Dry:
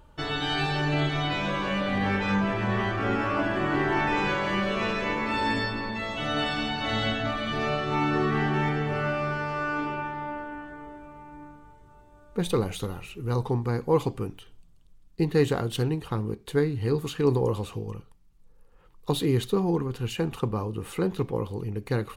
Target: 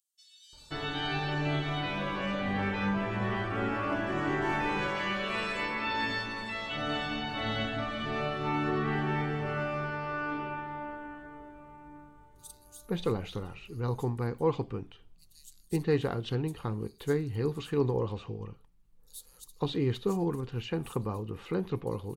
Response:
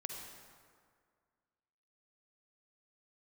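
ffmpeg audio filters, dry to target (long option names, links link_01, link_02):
-filter_complex "[0:a]asettb=1/sr,asplit=3[link_01][link_02][link_03];[link_01]atrim=end=4.424[link_04];[link_02]atrim=start=4.42:end=6.24,asetpts=PTS-STARTPTS,afade=type=in:duration=0.004:curve=qsin,afade=type=out:start_time=1.816:duration=0.004:curve=qsin,tiltshelf=frequency=970:gain=-4.5[link_05];[link_03]atrim=start=6.236[link_06];[link_04][link_05]acrossfade=duration=0.004:curve1=hsin:curve2=qsin[link_07];[link_07][link_06]acrossfade=duration=0.004:curve1=qsin:curve2=hsin,acrossover=split=5600[link_08][link_09];[link_08]adelay=530[link_10];[link_10][link_09]amix=inputs=2:normalize=0,volume=-5dB"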